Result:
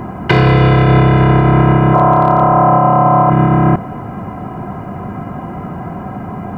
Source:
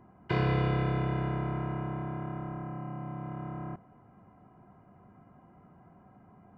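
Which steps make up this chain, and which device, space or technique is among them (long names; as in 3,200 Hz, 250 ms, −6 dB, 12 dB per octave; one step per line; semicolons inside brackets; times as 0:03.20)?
0:01.94–0:03.30: flat-topped bell 800 Hz +12 dB
loud club master (downward compressor 2.5 to 1, threshold −32 dBFS, peak gain reduction 6 dB; hard clipping −25 dBFS, distortion −30 dB; boost into a limiter +33.5 dB)
level −1 dB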